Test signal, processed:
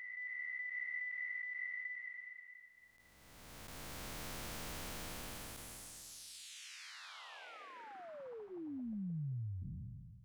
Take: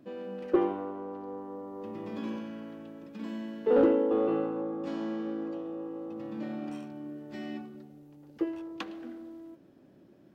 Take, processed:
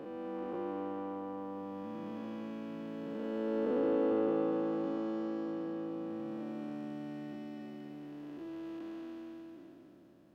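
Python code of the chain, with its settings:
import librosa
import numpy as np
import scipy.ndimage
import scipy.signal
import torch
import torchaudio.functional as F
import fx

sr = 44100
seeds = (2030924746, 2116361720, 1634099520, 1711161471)

y = fx.spec_blur(x, sr, span_ms=931.0)
y = fx.notch(y, sr, hz=390.0, q=12.0)
y = fx.echo_wet_highpass(y, sr, ms=223, feedback_pct=59, hz=1500.0, wet_db=-11.0)
y = y * 10.0 ** (-1.0 / 20.0)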